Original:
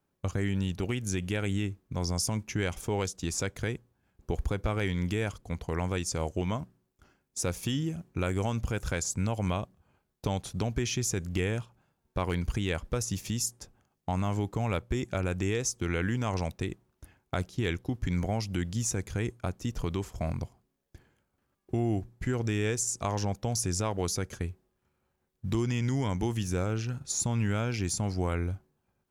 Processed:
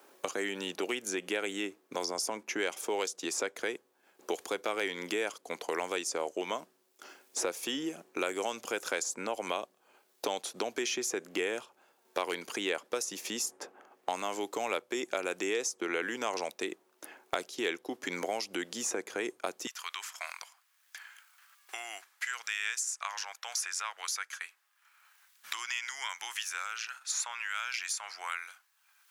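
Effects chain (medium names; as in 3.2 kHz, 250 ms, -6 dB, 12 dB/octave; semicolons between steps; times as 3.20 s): high-pass 350 Hz 24 dB/octave, from 19.67 s 1.3 kHz; three bands compressed up and down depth 70%; trim +1.5 dB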